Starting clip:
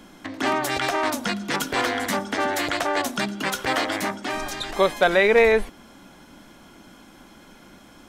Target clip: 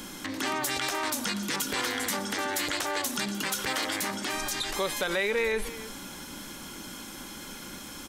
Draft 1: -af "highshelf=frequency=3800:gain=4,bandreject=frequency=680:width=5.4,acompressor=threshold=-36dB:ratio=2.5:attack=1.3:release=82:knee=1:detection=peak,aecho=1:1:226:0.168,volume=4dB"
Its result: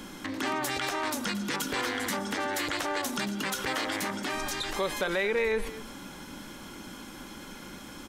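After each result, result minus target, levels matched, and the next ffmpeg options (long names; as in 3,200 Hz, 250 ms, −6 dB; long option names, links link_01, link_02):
echo 76 ms early; 8,000 Hz band −5.0 dB
-af "highshelf=frequency=3800:gain=4,bandreject=frequency=680:width=5.4,acompressor=threshold=-36dB:ratio=2.5:attack=1.3:release=82:knee=1:detection=peak,aecho=1:1:302:0.168,volume=4dB"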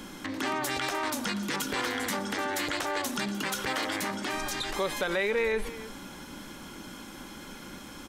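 8,000 Hz band −5.0 dB
-af "highshelf=frequency=3800:gain=13,bandreject=frequency=680:width=5.4,acompressor=threshold=-36dB:ratio=2.5:attack=1.3:release=82:knee=1:detection=peak,aecho=1:1:302:0.168,volume=4dB"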